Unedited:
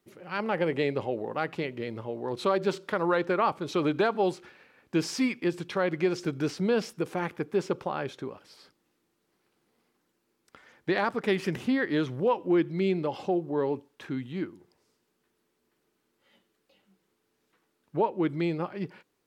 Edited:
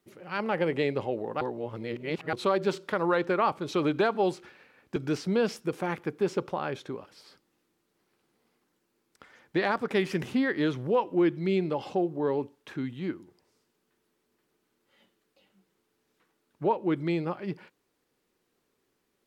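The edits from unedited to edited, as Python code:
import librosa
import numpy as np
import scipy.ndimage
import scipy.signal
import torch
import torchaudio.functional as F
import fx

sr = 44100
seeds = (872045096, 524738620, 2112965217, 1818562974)

y = fx.edit(x, sr, fx.reverse_span(start_s=1.41, length_s=0.92),
    fx.cut(start_s=4.96, length_s=1.33), tone=tone)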